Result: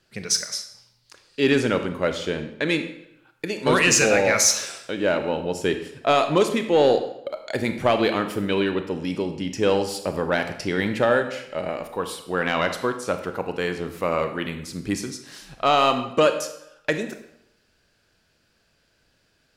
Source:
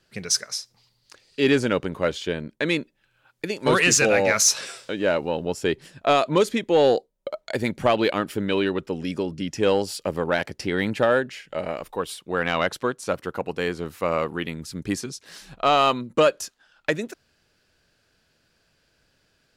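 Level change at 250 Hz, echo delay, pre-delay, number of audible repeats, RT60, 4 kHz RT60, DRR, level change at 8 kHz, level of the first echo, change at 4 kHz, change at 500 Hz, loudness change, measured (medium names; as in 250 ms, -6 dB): +1.0 dB, no echo, 26 ms, no echo, 0.80 s, 0.65 s, 7.0 dB, +0.5 dB, no echo, +0.5 dB, +0.5 dB, +0.5 dB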